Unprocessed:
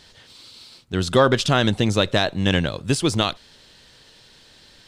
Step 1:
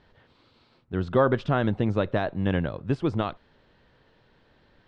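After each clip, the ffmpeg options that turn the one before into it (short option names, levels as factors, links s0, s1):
-af "lowpass=1500,volume=0.596"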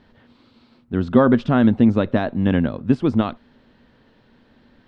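-af "equalizer=f=240:w=3.6:g=13.5,volume=1.5"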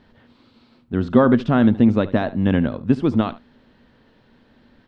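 -af "aecho=1:1:73:0.133"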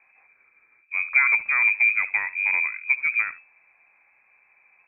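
-af "lowpass=f=2200:t=q:w=0.5098,lowpass=f=2200:t=q:w=0.6013,lowpass=f=2200:t=q:w=0.9,lowpass=f=2200:t=q:w=2.563,afreqshift=-2600,volume=0.531"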